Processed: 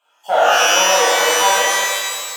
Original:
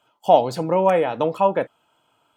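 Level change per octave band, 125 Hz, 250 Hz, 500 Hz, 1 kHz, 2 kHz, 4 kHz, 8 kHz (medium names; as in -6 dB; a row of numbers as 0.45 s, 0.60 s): under -15 dB, -9.0 dB, +1.0 dB, +5.5 dB, +19.5 dB, +23.0 dB, no reading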